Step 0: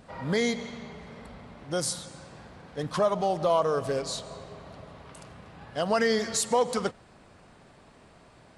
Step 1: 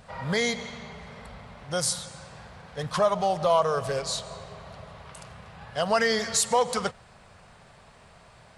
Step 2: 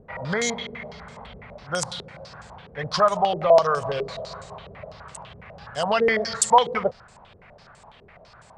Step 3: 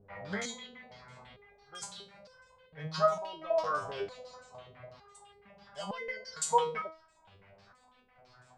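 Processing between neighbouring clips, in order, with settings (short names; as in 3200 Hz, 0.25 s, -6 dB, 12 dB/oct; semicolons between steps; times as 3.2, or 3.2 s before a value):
bell 300 Hz -14.5 dB 0.81 oct; gain +4 dB
stepped low-pass 12 Hz 400–7600 Hz
stepped resonator 2.2 Hz 99–510 Hz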